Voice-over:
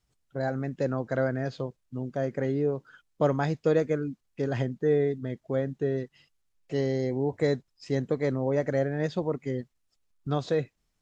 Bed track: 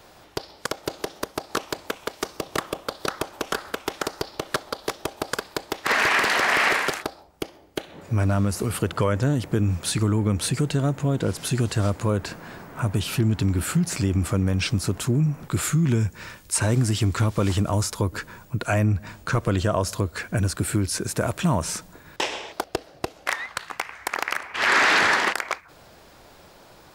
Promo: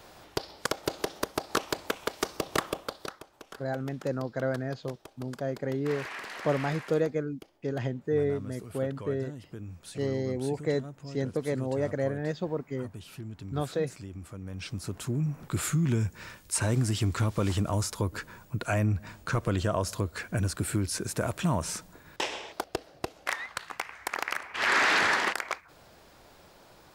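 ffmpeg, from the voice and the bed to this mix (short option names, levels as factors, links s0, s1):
-filter_complex "[0:a]adelay=3250,volume=0.708[s0];[1:a]volume=4.22,afade=t=out:st=2.62:d=0.58:silence=0.125893,afade=t=in:st=14.39:d=1.21:silence=0.199526[s1];[s0][s1]amix=inputs=2:normalize=0"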